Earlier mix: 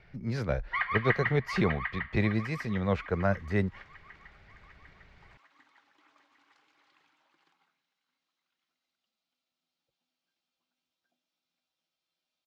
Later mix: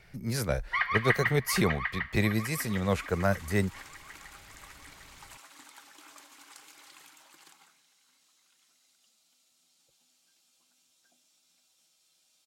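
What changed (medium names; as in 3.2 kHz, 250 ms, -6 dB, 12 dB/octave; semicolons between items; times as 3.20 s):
second sound +10.0 dB; master: remove distance through air 230 m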